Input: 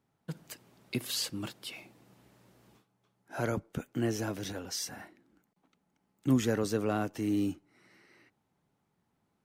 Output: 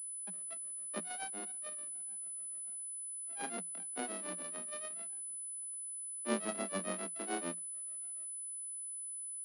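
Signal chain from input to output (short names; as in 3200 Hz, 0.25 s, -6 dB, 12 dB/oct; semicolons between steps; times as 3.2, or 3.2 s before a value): sample sorter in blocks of 64 samples; grains 0.184 s, grains 6.9/s, spray 12 ms, pitch spread up and down by 3 st; Chebyshev high-pass 170 Hz, order 10; pulse-width modulation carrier 10000 Hz; gain -6.5 dB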